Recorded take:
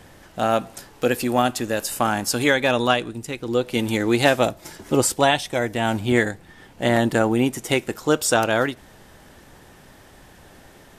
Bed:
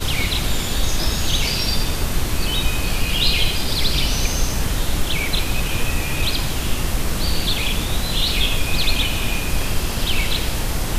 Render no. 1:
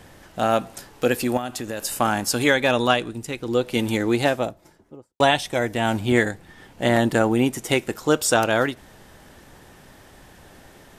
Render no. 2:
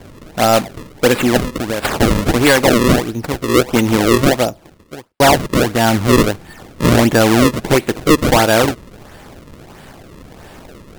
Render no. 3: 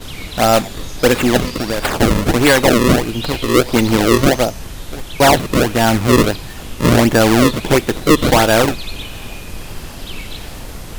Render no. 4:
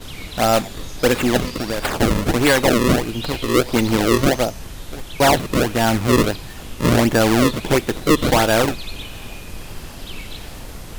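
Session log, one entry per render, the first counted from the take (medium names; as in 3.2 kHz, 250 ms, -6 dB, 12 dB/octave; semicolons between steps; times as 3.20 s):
1.37–1.85 s: compression 4:1, threshold -26 dBFS; 3.78–5.20 s: studio fade out
decimation with a swept rate 33×, swing 160% 1.5 Hz; sine folder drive 6 dB, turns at -4 dBFS
add bed -9 dB
trim -4 dB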